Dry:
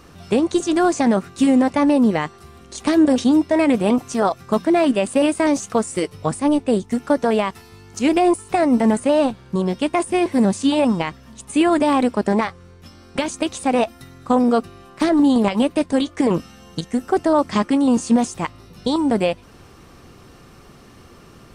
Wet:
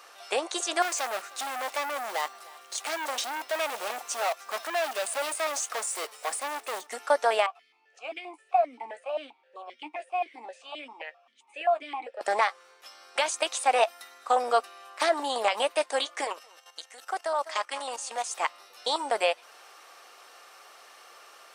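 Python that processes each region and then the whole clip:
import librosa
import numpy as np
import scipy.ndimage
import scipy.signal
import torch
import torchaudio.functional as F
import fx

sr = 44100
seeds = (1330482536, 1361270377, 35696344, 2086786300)

y = fx.chain(x, sr, fx.block_float(bits=5),
    fx.clip_hard(threshold_db=-22.5),
    fx.echo_single(ms=309, db=-22.0), at=(0.82, 6.87))
y = fx.chain(y, sr, fx.doubler(ms=13.0, db=-9.0),
    fx.vowel_held(hz=7.6), at=(7.46, 12.21))
y = fx.chain(y, sr, fx.low_shelf(hz=430.0, db=-11.5),
    fx.echo_single(ms=197, db=-15.5),
    fx.level_steps(step_db=12), at=(16.24, 18.31))
y = scipy.signal.sosfilt(scipy.signal.butter(4, 620.0, 'highpass', fs=sr, output='sos'), y)
y = fx.notch(y, sr, hz=1000.0, q=15.0)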